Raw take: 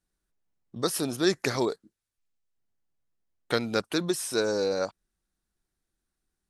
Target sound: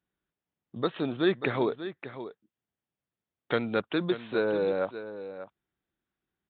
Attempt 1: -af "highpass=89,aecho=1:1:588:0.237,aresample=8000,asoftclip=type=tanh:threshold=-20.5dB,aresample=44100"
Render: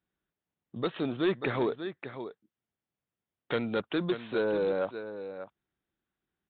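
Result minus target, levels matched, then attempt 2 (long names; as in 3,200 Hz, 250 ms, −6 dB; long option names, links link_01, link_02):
soft clipping: distortion +15 dB
-af "highpass=89,aecho=1:1:588:0.237,aresample=8000,asoftclip=type=tanh:threshold=-10dB,aresample=44100"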